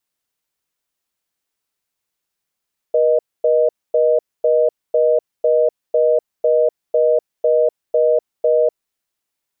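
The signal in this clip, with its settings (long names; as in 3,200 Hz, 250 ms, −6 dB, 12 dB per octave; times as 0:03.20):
call progress tone reorder tone, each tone −14 dBFS 5.83 s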